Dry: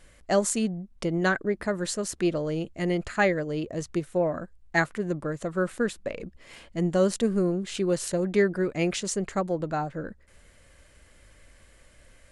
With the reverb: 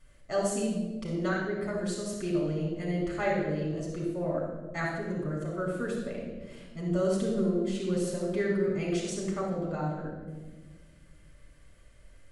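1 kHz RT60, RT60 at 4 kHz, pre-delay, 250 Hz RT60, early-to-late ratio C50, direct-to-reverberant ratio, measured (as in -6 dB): 1.1 s, 0.90 s, 3 ms, 2.3 s, 1.0 dB, -4.5 dB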